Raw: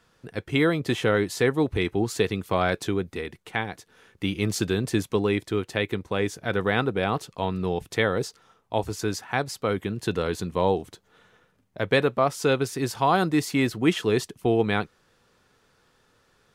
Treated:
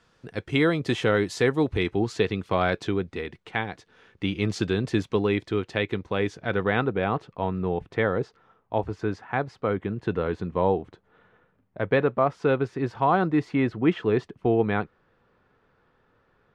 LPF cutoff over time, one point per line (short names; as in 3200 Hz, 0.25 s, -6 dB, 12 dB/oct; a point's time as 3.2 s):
1.49 s 7100 Hz
2.23 s 4300 Hz
6.16 s 4300 Hz
7.35 s 1900 Hz